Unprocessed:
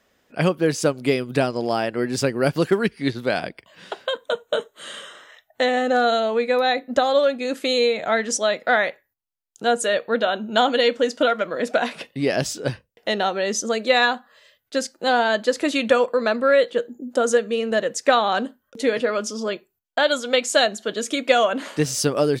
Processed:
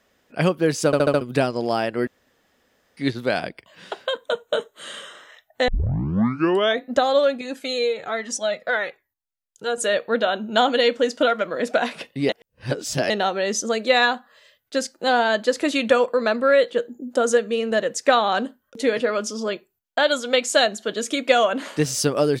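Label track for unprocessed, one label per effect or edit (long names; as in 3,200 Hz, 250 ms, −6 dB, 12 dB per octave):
0.860000	0.860000	stutter in place 0.07 s, 5 plays
2.070000	2.970000	fill with room tone
5.680000	5.680000	tape start 1.16 s
7.410000	9.780000	flanger whose copies keep moving one way falling 1.2 Hz
12.290000	13.100000	reverse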